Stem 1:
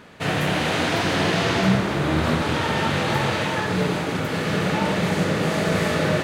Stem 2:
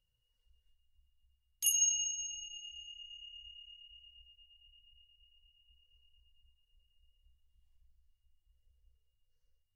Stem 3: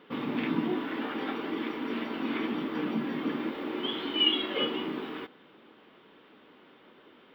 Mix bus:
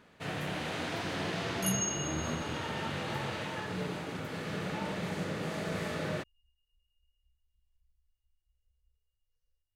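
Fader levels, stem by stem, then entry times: −14.0 dB, −4.5 dB, muted; 0.00 s, 0.00 s, muted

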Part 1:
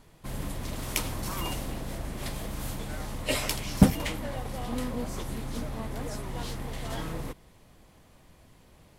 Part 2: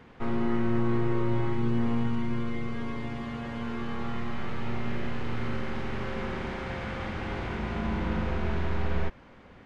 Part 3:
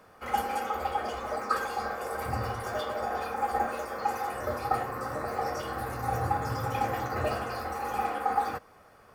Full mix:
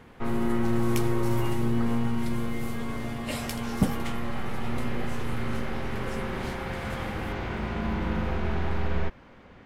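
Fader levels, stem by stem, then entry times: −6.5, +1.0, −17.5 decibels; 0.00, 0.00, 0.30 seconds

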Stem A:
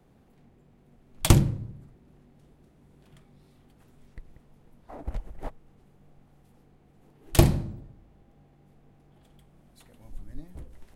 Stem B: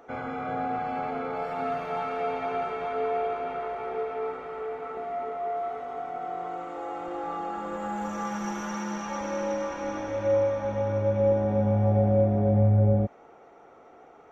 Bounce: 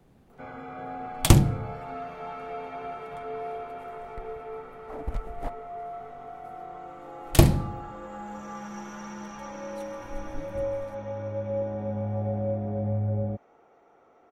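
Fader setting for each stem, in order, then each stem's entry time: +1.5, −7.0 decibels; 0.00, 0.30 seconds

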